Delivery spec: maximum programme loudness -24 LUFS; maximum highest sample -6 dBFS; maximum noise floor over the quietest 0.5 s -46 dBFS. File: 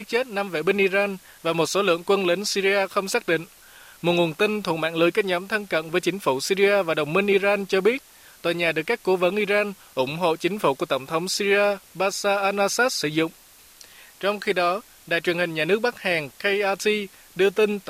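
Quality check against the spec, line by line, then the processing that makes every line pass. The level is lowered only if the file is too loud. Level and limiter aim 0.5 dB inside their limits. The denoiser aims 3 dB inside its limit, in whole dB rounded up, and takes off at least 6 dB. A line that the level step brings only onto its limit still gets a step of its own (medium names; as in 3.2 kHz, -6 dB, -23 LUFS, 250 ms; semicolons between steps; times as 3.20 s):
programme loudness -23.0 LUFS: fail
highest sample -7.0 dBFS: pass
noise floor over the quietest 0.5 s -51 dBFS: pass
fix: trim -1.5 dB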